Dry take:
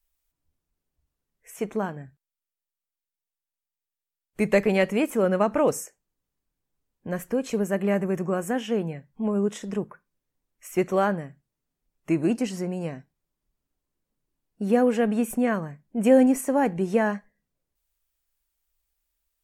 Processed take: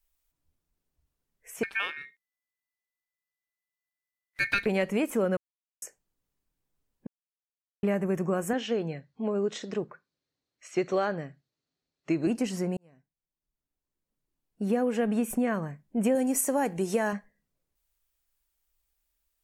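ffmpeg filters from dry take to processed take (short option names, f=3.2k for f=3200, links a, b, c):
-filter_complex "[0:a]asettb=1/sr,asplit=3[a][b][c];[a]atrim=end=1.634[d];[b]atrim=start=1.63:end=4.66,asetpts=PTS-STARTPTS,afade=t=in:d=0.004:c=qsin,afade=t=out:st=3.026:d=0.004:c=qsin,aeval=exprs='val(0)*sin(2*PI*2000*n/s)':c=same[e];[c]atrim=start=4.656[f];[d][e]acrossfade=d=0.004:c1=hsin:c2=qsin[g];[g][f]acrossfade=d=0.004:c1=qsin:c2=hsin,asettb=1/sr,asplit=3[h][i][j];[h]atrim=end=8.534[k];[i]atrim=start=8.53:end=12.27,asetpts=PTS-STARTPTS,afade=t=in:d=0.004:c=qsin,afade=t=out:st=3.736:d=0.004:c=qsin,highpass=120,equalizer=f=200:t=q:w=4:g=-7,equalizer=f=960:t=q:w=4:g=-5,equalizer=f=4.2k:t=q:w=4:g=10,lowpass=f=6.7k:w=0.5412,lowpass=f=6.7k:w=1.3066[l];[j]atrim=start=12.266[m];[k][l]acrossfade=d=0.004:c1=hsin:c2=qsin[n];[n][m]acrossfade=d=0.004:c1=qsin:c2=hsin,asettb=1/sr,asplit=3[o][p][q];[o]atrim=end=16.154[r];[p]atrim=start=16.15:end=17.13,asetpts=PTS-STARTPTS,afade=t=in:d=0.004:c=qsin,afade=t=out:st=0.976:d=0.004:c=qsin,bass=f=250:g=-5,treble=f=4k:g=10[s];[q]atrim=start=17.126[t];[r][s]acrossfade=d=0.004:c1=hsin:c2=qsin[u];[u][t]acrossfade=d=0.004:c1=qsin:c2=hsin,asplit=6[v][w][x][y][z][aa];[v]atrim=end=5.37,asetpts=PTS-STARTPTS,afade=t=out:st=5.366:d=0.004:c=hsin[ab];[w]atrim=start=5.37:end=5.82,asetpts=PTS-STARTPTS,volume=0[ac];[x]atrim=start=5.82:end=7.07,asetpts=PTS-STARTPTS,afade=t=in:d=0.004:c=hsin,afade=t=out:st=1.246:d=0.004:c=hsin[ad];[y]atrim=start=7.07:end=7.83,asetpts=PTS-STARTPTS,volume=0[ae];[z]atrim=start=7.83:end=12.77,asetpts=PTS-STARTPTS,afade=t=in:d=0.004:c=hsin,afade=t=out:st=4.936:d=0.004:c=hsin[af];[aa]atrim=start=12.77,asetpts=PTS-STARTPTS,afade=t=in:d=2.36[ag];[ab][ac][ad][ae][af][ag]concat=n=6:v=0:a=1,acompressor=threshold=-23dB:ratio=4"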